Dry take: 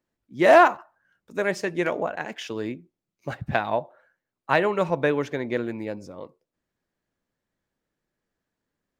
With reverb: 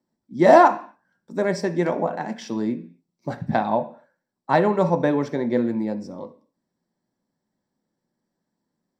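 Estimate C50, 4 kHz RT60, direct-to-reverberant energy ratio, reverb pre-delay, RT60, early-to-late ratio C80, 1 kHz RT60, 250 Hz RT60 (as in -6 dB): 14.5 dB, n/a, 7.0 dB, 3 ms, 0.45 s, 19.5 dB, 0.45 s, 0.55 s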